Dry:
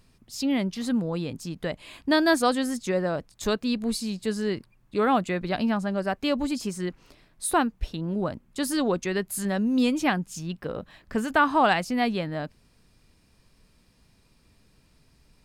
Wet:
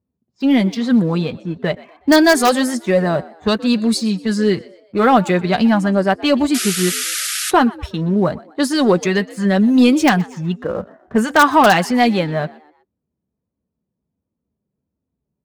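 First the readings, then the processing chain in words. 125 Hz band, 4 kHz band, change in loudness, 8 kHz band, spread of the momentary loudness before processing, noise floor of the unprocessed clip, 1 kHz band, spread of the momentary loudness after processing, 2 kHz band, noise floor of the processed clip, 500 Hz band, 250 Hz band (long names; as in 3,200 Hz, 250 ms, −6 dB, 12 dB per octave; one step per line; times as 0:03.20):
+11.5 dB, +10.5 dB, +10.5 dB, +11.5 dB, 12 LU, −62 dBFS, +10.0 dB, 11 LU, +10.0 dB, −79 dBFS, +10.0 dB, +11.0 dB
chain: low-pass that shuts in the quiet parts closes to 550 Hz, open at −22 dBFS
in parallel at −3 dB: wrap-around overflow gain 10.5 dB
on the sum: high-pass filter 73 Hz 24 dB per octave
noise reduction from a noise print of the clip's start 18 dB
leveller curve on the samples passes 1
on a send: echo with shifted repeats 123 ms, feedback 40%, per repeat +74 Hz, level −21 dB
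on the sum: sound drawn into the spectrogram noise, 0:06.54–0:07.51, 1,200–12,000 Hz −25 dBFS
flanger 1.4 Hz, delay 3.3 ms, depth 2.2 ms, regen −41%
level +6.5 dB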